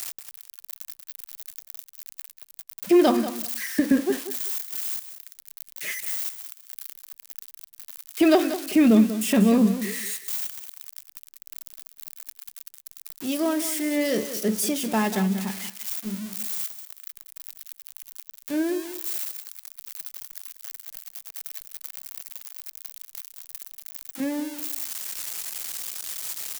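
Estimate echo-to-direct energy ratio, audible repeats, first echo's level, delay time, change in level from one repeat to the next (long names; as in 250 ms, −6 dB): −12.0 dB, 2, −12.0 dB, 189 ms, −15.0 dB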